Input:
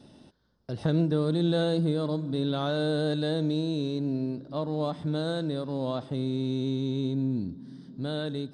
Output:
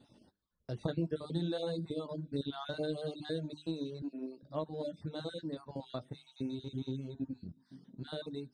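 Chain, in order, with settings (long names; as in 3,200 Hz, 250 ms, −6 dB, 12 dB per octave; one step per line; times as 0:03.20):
time-frequency cells dropped at random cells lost 28%
flanger 0.58 Hz, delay 7.6 ms, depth 8 ms, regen −43%
mains-hum notches 50/100/150/200/250/300/350/400 Hz
transient designer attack +4 dB, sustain 0 dB
0:04.02–0:04.43: high-pass filter 240 Hz 24 dB per octave
reverb reduction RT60 0.89 s
level −4 dB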